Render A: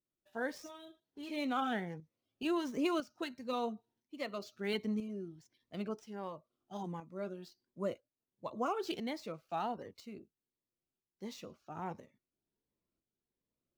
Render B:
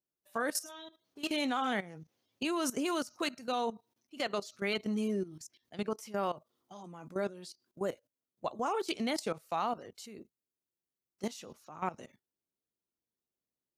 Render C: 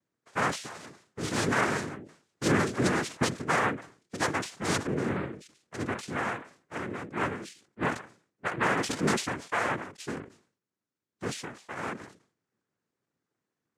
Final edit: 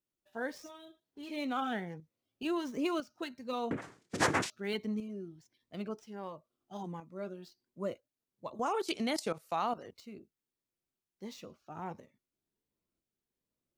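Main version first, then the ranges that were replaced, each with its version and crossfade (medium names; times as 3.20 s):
A
3.71–4.50 s: from C
8.54–9.92 s: from B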